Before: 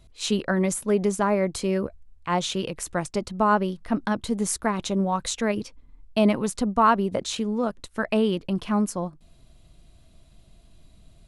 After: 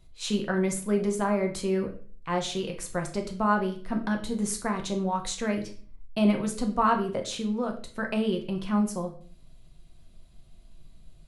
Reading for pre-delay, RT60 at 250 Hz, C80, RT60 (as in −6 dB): 4 ms, 0.55 s, 14.5 dB, 0.45 s